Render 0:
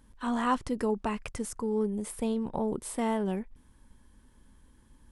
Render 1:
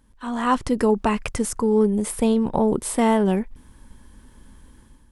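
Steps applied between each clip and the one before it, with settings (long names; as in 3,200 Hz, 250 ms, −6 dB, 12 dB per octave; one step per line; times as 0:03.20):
automatic gain control gain up to 11 dB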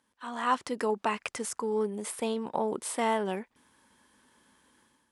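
meter weighting curve A
level −5.5 dB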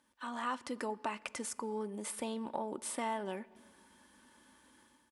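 comb filter 3.4 ms, depth 36%
downward compressor 2 to 1, threshold −41 dBFS, peak gain reduction 10.5 dB
on a send at −20 dB: convolution reverb RT60 1.6 s, pre-delay 13 ms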